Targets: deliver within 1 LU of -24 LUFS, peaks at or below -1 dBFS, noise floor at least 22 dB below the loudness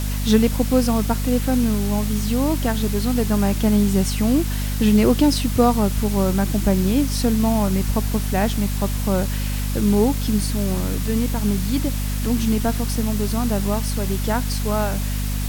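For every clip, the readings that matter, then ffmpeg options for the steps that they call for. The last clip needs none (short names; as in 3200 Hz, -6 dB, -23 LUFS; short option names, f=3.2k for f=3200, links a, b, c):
hum 50 Hz; harmonics up to 250 Hz; hum level -21 dBFS; noise floor -23 dBFS; noise floor target -43 dBFS; loudness -20.5 LUFS; peak -3.0 dBFS; loudness target -24.0 LUFS
-> -af "bandreject=f=50:t=h:w=4,bandreject=f=100:t=h:w=4,bandreject=f=150:t=h:w=4,bandreject=f=200:t=h:w=4,bandreject=f=250:t=h:w=4"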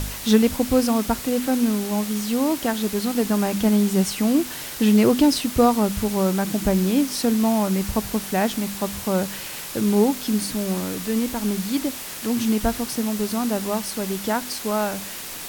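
hum none; noise floor -34 dBFS; noise floor target -44 dBFS
-> -af "afftdn=nr=10:nf=-34"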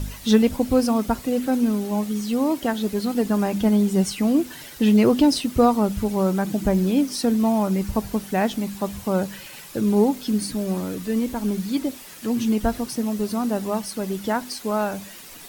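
noise floor -41 dBFS; noise floor target -45 dBFS
-> -af "afftdn=nr=6:nf=-41"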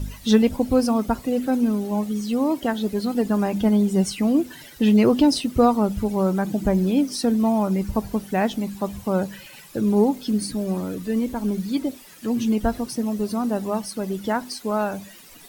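noise floor -45 dBFS; loudness -22.5 LUFS; peak -4.0 dBFS; loudness target -24.0 LUFS
-> -af "volume=-1.5dB"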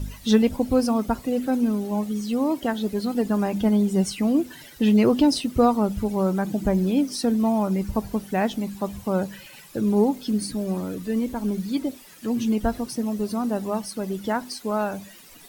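loudness -24.0 LUFS; peak -5.5 dBFS; noise floor -47 dBFS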